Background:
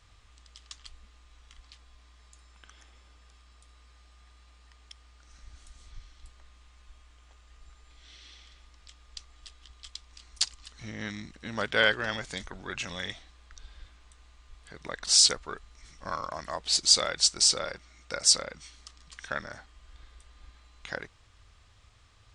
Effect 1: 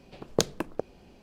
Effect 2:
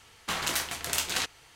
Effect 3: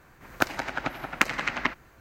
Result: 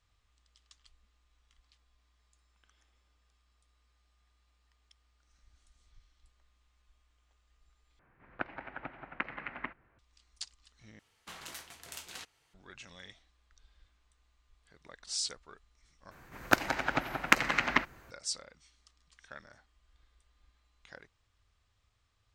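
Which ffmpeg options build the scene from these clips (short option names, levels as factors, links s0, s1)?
-filter_complex "[3:a]asplit=2[s0][s1];[0:a]volume=0.178[s2];[s0]lowpass=f=2600:w=0.5412,lowpass=f=2600:w=1.3066[s3];[s2]asplit=4[s4][s5][s6][s7];[s4]atrim=end=7.994[s8];[s3]atrim=end=2,asetpts=PTS-STARTPTS,volume=0.237[s9];[s5]atrim=start=9.986:end=10.994[s10];[2:a]atrim=end=1.55,asetpts=PTS-STARTPTS,volume=0.15[s11];[s6]atrim=start=12.536:end=16.114[s12];[s1]atrim=end=2,asetpts=PTS-STARTPTS,volume=0.944[s13];[s7]atrim=start=18.106[s14];[s8][s9]acrossfade=d=0.004:c1=hsin:c2=hsin[s15];[s15][s10]acrossfade=d=0.004:c1=hsin:c2=hsin[s16];[s16][s11]acrossfade=d=0.004:c1=hsin:c2=hsin[s17];[s17][s12]acrossfade=d=0.004:c1=hsin:c2=hsin[s18];[s18][s13]acrossfade=d=0.004:c1=hsin:c2=hsin[s19];[s19][s14]acrossfade=d=0.004:c1=hsin:c2=hsin"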